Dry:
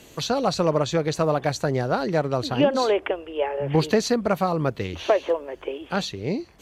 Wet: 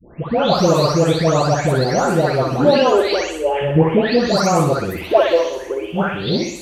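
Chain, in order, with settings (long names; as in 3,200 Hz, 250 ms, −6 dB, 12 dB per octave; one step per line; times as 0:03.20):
every frequency bin delayed by itself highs late, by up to 543 ms
flutter between parallel walls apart 10.6 metres, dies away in 0.63 s
level +7.5 dB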